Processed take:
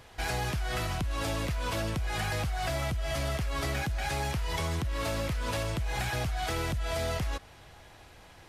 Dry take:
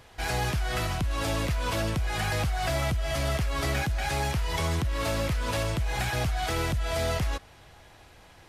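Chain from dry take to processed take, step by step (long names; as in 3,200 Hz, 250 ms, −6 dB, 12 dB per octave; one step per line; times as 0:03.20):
downward compressor, threshold −28 dBFS, peak gain reduction 4.5 dB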